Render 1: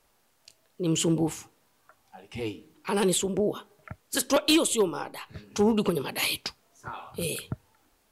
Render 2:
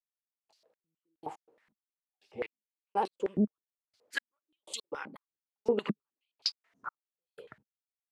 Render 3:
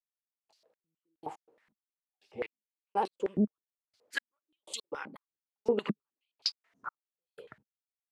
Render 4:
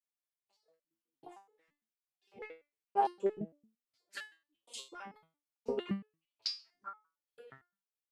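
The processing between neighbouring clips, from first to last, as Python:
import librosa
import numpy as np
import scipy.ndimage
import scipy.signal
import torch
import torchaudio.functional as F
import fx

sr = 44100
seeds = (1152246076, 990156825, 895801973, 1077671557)

y1 = fx.step_gate(x, sr, bpm=122, pattern='....xx....x.xx', floor_db=-60.0, edge_ms=4.5)
y1 = fx.filter_held_bandpass(y1, sr, hz=9.5, low_hz=210.0, high_hz=4600.0)
y1 = y1 * 10.0 ** (6.5 / 20.0)
y2 = y1
y3 = fx.resonator_held(y2, sr, hz=8.8, low_hz=110.0, high_hz=430.0)
y3 = y3 * 10.0 ** (7.5 / 20.0)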